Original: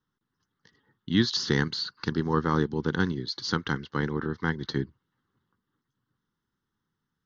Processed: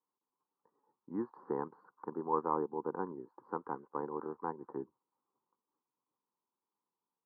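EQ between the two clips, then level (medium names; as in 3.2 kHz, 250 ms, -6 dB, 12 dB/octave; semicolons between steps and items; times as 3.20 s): high-pass 630 Hz 12 dB/octave; elliptic low-pass 1 kHz, stop band 70 dB; +1.5 dB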